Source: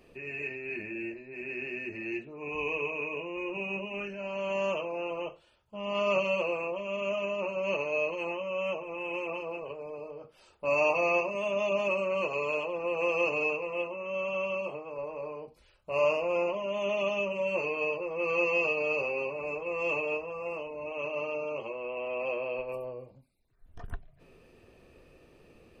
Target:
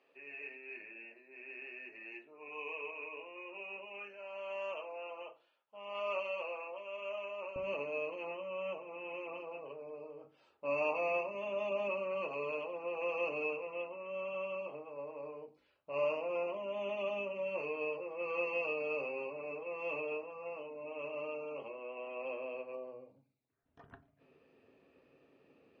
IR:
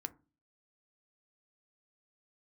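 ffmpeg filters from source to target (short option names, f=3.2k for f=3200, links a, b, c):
-filter_complex "[0:a]asetnsamples=n=441:p=0,asendcmd='7.56 highpass f 180',highpass=570,lowpass=3.5k[a];[1:a]atrim=start_sample=2205,asetrate=41013,aresample=44100[b];[a][b]afir=irnorm=-1:irlink=0,volume=-5.5dB"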